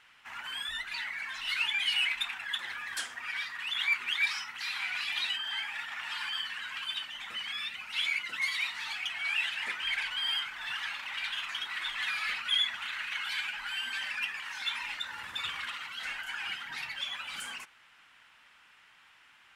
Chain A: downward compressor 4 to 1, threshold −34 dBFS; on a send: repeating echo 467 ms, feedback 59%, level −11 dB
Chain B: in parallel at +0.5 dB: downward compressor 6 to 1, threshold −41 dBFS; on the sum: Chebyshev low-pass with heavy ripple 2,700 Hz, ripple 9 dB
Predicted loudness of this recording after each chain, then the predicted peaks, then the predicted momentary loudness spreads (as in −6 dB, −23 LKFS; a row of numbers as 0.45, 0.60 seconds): −35.5, −37.5 LKFS; −23.5, −20.5 dBFS; 5, 7 LU